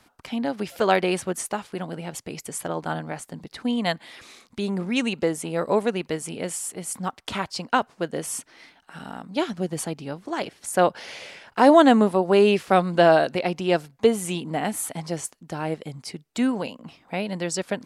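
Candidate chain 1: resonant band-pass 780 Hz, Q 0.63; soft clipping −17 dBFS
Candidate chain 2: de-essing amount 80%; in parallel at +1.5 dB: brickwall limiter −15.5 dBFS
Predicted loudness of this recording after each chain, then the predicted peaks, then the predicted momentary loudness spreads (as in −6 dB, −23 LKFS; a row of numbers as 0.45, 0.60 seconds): −29.5, −20.0 LKFS; −17.0, −3.0 dBFS; 18, 16 LU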